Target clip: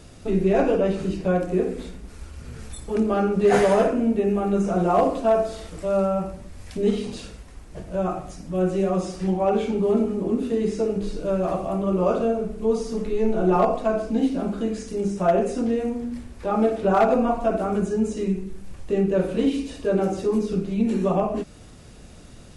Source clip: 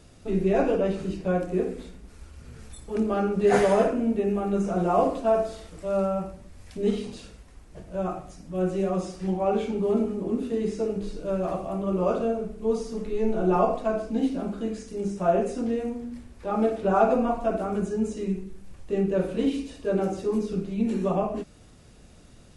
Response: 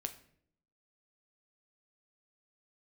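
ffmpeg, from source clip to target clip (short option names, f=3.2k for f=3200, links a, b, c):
-filter_complex "[0:a]asplit=2[a][b];[b]acompressor=threshold=-32dB:ratio=6,volume=-2dB[c];[a][c]amix=inputs=2:normalize=0,asoftclip=type=hard:threshold=-12.5dB,volume=1.5dB"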